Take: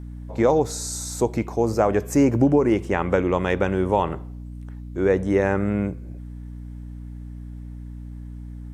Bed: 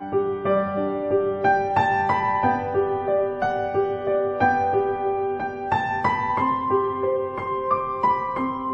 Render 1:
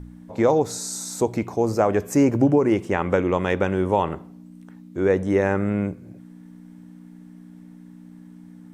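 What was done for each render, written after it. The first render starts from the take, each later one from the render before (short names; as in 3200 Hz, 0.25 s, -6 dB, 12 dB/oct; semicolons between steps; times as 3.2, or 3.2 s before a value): de-hum 60 Hz, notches 2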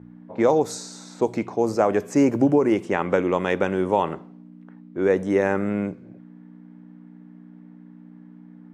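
HPF 160 Hz 12 dB/oct; low-pass opened by the level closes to 1700 Hz, open at -17 dBFS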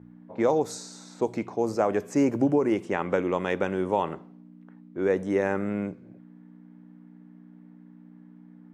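gain -4.5 dB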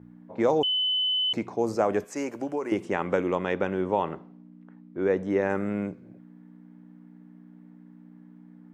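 0.63–1.33 bleep 3020 Hz -22.5 dBFS; 2.04–2.72 HPF 880 Hz 6 dB/oct; 3.35–5.5 air absorption 92 m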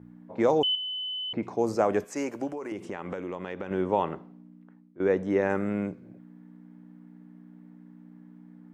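0.75–1.43 air absorption 430 m; 2.51–3.71 compressor 4:1, threshold -32 dBFS; 4.21–5 fade out equal-power, to -15.5 dB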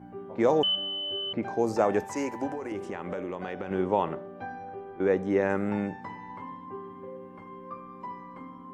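add bed -19.5 dB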